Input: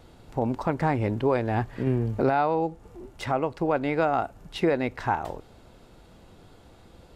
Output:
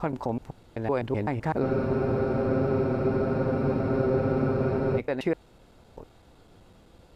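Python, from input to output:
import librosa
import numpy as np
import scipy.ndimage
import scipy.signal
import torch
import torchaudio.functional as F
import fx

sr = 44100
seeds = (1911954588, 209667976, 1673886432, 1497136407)

y = fx.block_reorder(x, sr, ms=127.0, group=6)
y = fx.spec_freeze(y, sr, seeds[0], at_s=1.65, hold_s=3.33)
y = y * librosa.db_to_amplitude(-3.0)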